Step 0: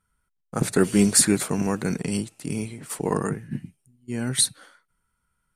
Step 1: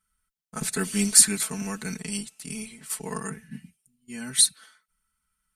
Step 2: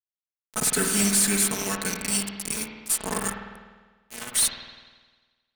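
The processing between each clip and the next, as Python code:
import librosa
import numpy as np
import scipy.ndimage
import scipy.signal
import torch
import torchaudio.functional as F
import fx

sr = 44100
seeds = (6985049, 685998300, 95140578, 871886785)

y1 = fx.tone_stack(x, sr, knobs='5-5-5')
y1 = y1 + 0.92 * np.pad(y1, (int(4.6 * sr / 1000.0), 0))[:len(y1)]
y1 = y1 * 10.0 ** (5.5 / 20.0)
y2 = fx.bass_treble(y1, sr, bass_db=-6, treble_db=6)
y2 = fx.fuzz(y2, sr, gain_db=33.0, gate_db=-32.0)
y2 = fx.rev_spring(y2, sr, rt60_s=1.4, pass_ms=(50,), chirp_ms=40, drr_db=3.0)
y2 = y2 * 10.0 ** (-5.5 / 20.0)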